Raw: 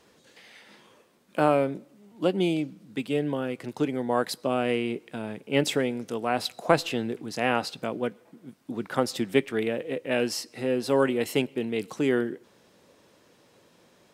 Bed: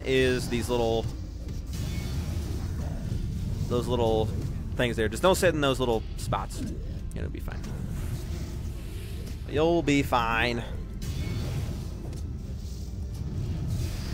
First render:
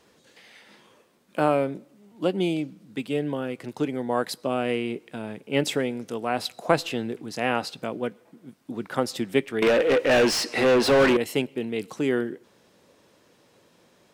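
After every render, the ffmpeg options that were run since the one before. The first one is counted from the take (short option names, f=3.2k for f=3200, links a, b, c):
-filter_complex "[0:a]asettb=1/sr,asplit=3[a][b][c];[a]atrim=end=9.624[d];[b]atrim=start=9.62:end=11.17,asetpts=PTS-STARTPTS,afade=t=in:d=0.004:c=qsin,afade=t=out:st=1.546:d=0.004:c=qsin,asplit=2[e][f];[f]highpass=f=720:p=1,volume=29dB,asoftclip=type=tanh:threshold=-11dB[g];[e][g]amix=inputs=2:normalize=0,lowpass=f=2.5k:p=1,volume=-6dB[h];[c]atrim=start=11.166[i];[d][h]acrossfade=d=0.004:c1=hsin:c2=qsin[j];[j][i]acrossfade=d=0.004:c1=qsin:c2=hsin"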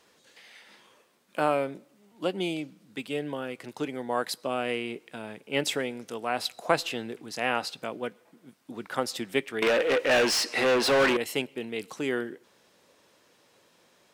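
-af "lowshelf=f=480:g=-9"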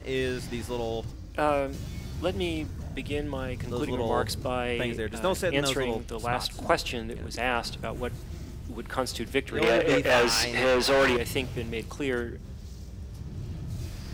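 -filter_complex "[1:a]volume=-5.5dB[a];[0:a][a]amix=inputs=2:normalize=0"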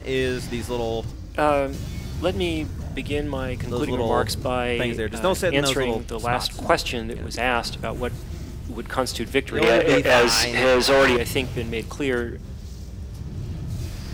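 -af "volume=5.5dB,alimiter=limit=-3dB:level=0:latency=1"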